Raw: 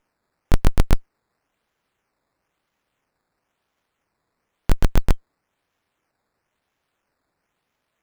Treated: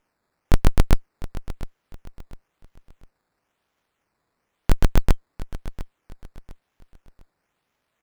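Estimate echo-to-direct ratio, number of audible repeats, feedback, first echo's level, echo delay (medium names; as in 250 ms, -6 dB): -15.0 dB, 3, 33%, -15.5 dB, 702 ms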